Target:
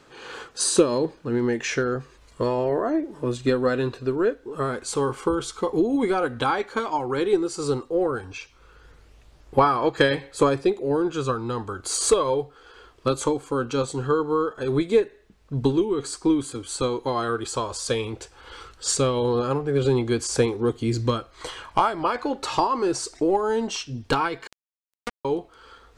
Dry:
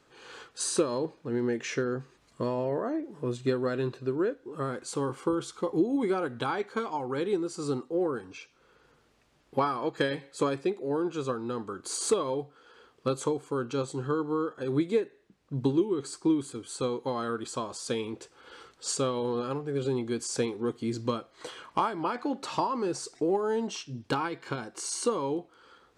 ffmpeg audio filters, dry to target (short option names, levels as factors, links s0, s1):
-filter_complex "[0:a]aphaser=in_gain=1:out_gain=1:delay=4.7:decay=0.26:speed=0.1:type=sinusoidal,asubboost=boost=10:cutoff=57,asettb=1/sr,asplit=3[s0][s1][s2];[s0]atrim=end=24.474[s3];[s1]atrim=start=24.47:end=25.25,asetpts=PTS-STARTPTS,afade=t=in:d=0.004:c=qsin,afade=t=out:st=0.776:d=0.004:c=qsin,acrusher=bits=2:mix=0:aa=0.5[s4];[s2]atrim=start=25.246[s5];[s3][s4]acrossfade=d=0.004:c1=hsin:c2=qsin[s6];[s6][s5]acrossfade=d=0.004:c1=qsin:c2=hsin,volume=2.37"